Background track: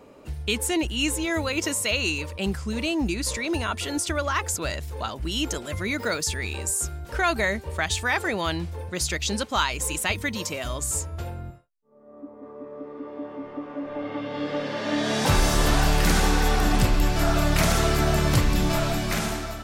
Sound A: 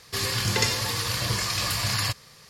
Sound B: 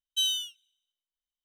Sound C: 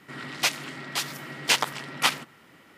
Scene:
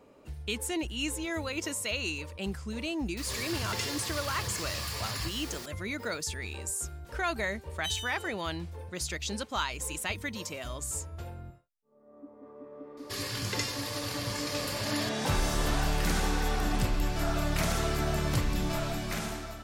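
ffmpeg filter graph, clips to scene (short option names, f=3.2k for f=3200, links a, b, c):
-filter_complex "[1:a]asplit=2[a][b];[0:a]volume=-8dB[c];[a]aeval=exprs='val(0)+0.5*0.0562*sgn(val(0))':c=same[d];[2:a]asplit=2[e][f];[f]adelay=280,highpass=300,lowpass=3.4k,asoftclip=type=hard:threshold=-28.5dB,volume=-13dB[g];[e][g]amix=inputs=2:normalize=0[h];[d]atrim=end=2.49,asetpts=PTS-STARTPTS,volume=-13.5dB,afade=t=in:d=0.004:c=hsin,afade=t=out:st=2.486:d=0.004:c=hsin,adelay=139797S[i];[h]atrim=end=1.44,asetpts=PTS-STARTPTS,volume=-9.5dB,afade=t=in:d=0.004:c=hsin,afade=t=out:st=1.436:d=0.004:c=hsin,adelay=7670[j];[b]atrim=end=2.49,asetpts=PTS-STARTPTS,volume=-9dB,afade=t=in:d=0.004:c=hsin,afade=t=out:st=2.486:d=0.004:c=hsin,adelay=12970[k];[c][i][j][k]amix=inputs=4:normalize=0"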